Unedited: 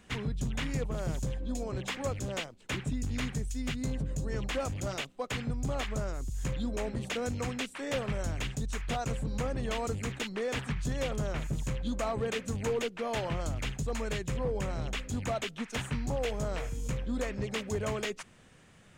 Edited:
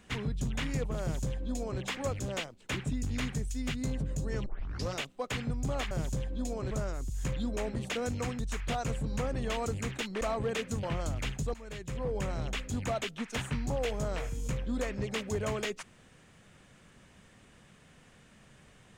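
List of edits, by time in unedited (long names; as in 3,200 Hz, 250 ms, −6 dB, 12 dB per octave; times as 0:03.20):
0:01.01–0:01.81: duplicate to 0:05.91
0:04.46: tape start 0.47 s
0:07.59–0:08.60: remove
0:10.42–0:11.98: remove
0:12.60–0:13.23: remove
0:13.94–0:14.62: fade in, from −17.5 dB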